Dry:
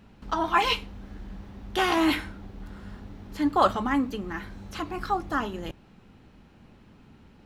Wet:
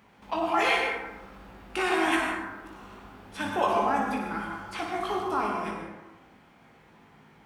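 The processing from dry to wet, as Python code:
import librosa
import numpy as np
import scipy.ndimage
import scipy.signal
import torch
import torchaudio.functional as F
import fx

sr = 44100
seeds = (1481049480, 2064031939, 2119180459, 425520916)

p1 = fx.formant_shift(x, sr, semitones=-4)
p2 = fx.over_compress(p1, sr, threshold_db=-27.0, ratio=-0.5)
p3 = p1 + (p2 * librosa.db_to_amplitude(-2.0))
p4 = fx.highpass(p3, sr, hz=660.0, slope=6)
p5 = fx.peak_eq(p4, sr, hz=4300.0, db=-3.0, octaves=0.77)
p6 = p5 + fx.room_early_taps(p5, sr, ms=(19, 58), db=(-5.5, -6.5), dry=0)
p7 = fx.rev_plate(p6, sr, seeds[0], rt60_s=1.2, hf_ratio=0.35, predelay_ms=85, drr_db=1.5)
y = p7 * librosa.db_to_amplitude(-4.0)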